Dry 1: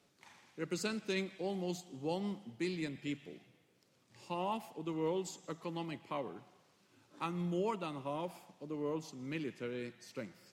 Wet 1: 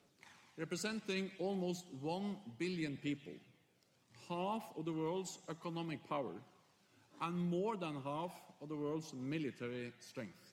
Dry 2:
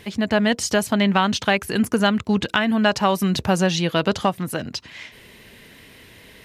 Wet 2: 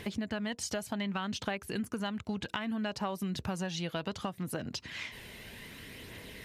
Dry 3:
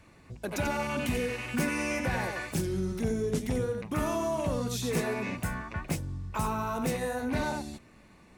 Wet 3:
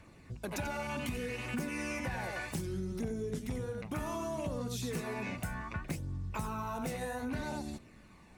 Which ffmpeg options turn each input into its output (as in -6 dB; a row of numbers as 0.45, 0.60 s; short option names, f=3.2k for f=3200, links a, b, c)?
-af "aphaser=in_gain=1:out_gain=1:delay=1.5:decay=0.29:speed=0.65:type=triangular,acompressor=threshold=-32dB:ratio=5,volume=-2dB"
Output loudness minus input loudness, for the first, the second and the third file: -2.5, -16.5, -6.5 LU